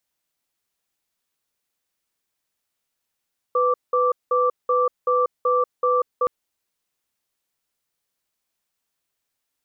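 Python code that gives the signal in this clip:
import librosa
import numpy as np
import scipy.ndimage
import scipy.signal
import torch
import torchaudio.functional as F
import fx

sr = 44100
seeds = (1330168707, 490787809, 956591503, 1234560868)

y = fx.cadence(sr, length_s=2.72, low_hz=498.0, high_hz=1170.0, on_s=0.19, off_s=0.19, level_db=-19.0)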